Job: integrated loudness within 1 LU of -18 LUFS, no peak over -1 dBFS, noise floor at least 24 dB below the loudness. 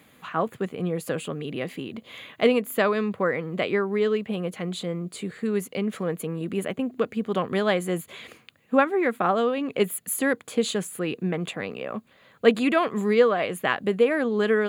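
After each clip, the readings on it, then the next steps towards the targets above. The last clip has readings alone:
loudness -25.5 LUFS; peak -5.0 dBFS; loudness target -18.0 LUFS
-> gain +7.5 dB; limiter -1 dBFS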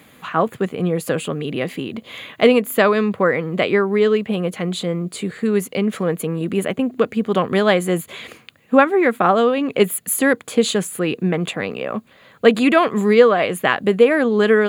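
loudness -18.5 LUFS; peak -1.0 dBFS; noise floor -50 dBFS

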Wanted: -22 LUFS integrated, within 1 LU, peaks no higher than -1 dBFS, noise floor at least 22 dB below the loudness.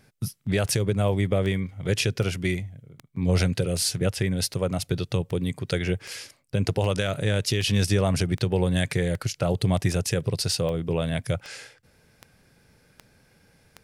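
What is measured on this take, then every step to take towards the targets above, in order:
clicks 18; loudness -25.5 LUFS; peak -10.5 dBFS; loudness target -22.0 LUFS
-> de-click; gain +3.5 dB

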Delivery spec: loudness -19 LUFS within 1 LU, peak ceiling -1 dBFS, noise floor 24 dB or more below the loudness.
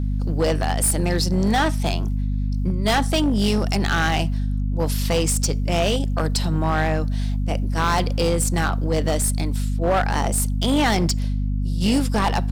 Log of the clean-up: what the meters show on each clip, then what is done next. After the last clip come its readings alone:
clipped 3.0%; flat tops at -14.0 dBFS; hum 50 Hz; harmonics up to 250 Hz; hum level -20 dBFS; loudness -21.5 LUFS; peak -14.0 dBFS; loudness target -19.0 LUFS
-> clip repair -14 dBFS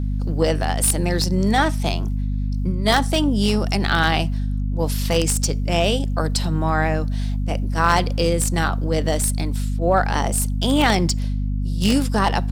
clipped 0.0%; hum 50 Hz; harmonics up to 250 Hz; hum level -20 dBFS
-> notches 50/100/150/200/250 Hz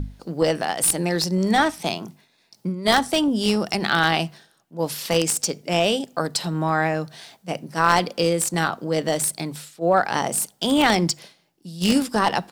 hum none; loudness -22.0 LUFS; peak -3.0 dBFS; loudness target -19.0 LUFS
-> gain +3 dB; limiter -1 dBFS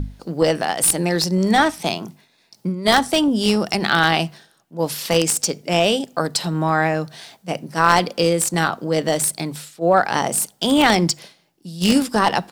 loudness -19.0 LUFS; peak -1.0 dBFS; noise floor -60 dBFS

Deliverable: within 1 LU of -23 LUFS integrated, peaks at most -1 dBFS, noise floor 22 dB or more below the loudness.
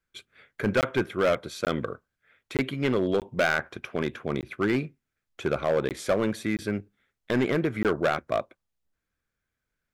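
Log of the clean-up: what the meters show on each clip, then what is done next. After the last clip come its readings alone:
clipped 1.4%; flat tops at -17.5 dBFS; dropouts 8; longest dropout 18 ms; loudness -28.0 LUFS; peak -17.5 dBFS; loudness target -23.0 LUFS
-> clip repair -17.5 dBFS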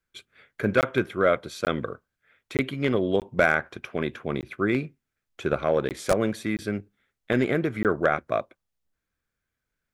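clipped 0.0%; dropouts 8; longest dropout 18 ms
-> interpolate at 0.81/1.65/2.57/3.2/4.41/5.89/6.57/7.83, 18 ms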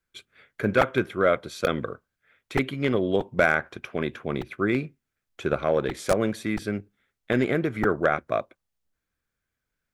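dropouts 0; loudness -26.0 LUFS; peak -6.5 dBFS; loudness target -23.0 LUFS
-> gain +3 dB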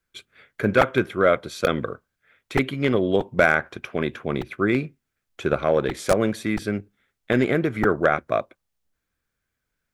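loudness -23.0 LUFS; peak -3.5 dBFS; noise floor -81 dBFS

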